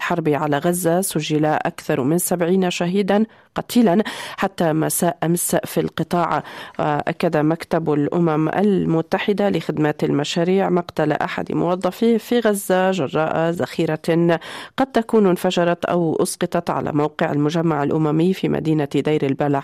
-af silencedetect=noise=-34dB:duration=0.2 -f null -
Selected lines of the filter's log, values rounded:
silence_start: 3.25
silence_end: 3.56 | silence_duration: 0.31